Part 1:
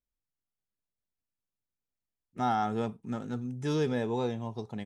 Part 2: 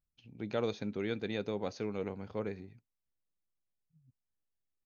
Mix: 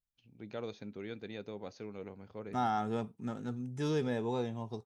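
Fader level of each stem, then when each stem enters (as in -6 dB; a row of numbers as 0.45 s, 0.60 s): -3.5 dB, -7.5 dB; 0.15 s, 0.00 s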